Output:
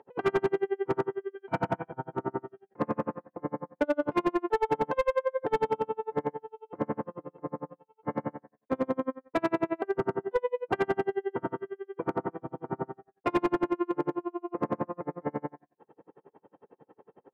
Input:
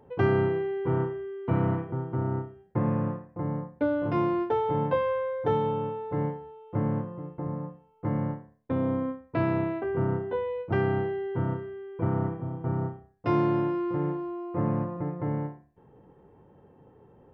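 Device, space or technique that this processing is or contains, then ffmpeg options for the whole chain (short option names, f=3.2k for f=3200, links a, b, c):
helicopter radio: -filter_complex "[0:a]asettb=1/sr,asplit=3[a][b][c];[a]atrim=end=1.354[d];[b]atrim=start=1.35:end=2.15,asetpts=PTS-STARTPTS,afade=t=in:d=0.004:c=qsin,afade=t=out:st=0.796:d=0.004:c=qsin,aecho=1:1:1.3:0.59,atrim=end_sample=35280[e];[c]atrim=start=2.146[f];[d][e]acrossfade=d=0.004:c1=hsin:c2=qsin[g];[g][f]acrossfade=d=0.004:c1=qsin:c2=hsin,highpass=330,lowpass=2.8k,aeval=exprs='val(0)*pow(10,-37*(0.5-0.5*cos(2*PI*11*n/s))/20)':c=same,asoftclip=type=hard:threshold=-27.5dB,volume=8.5dB"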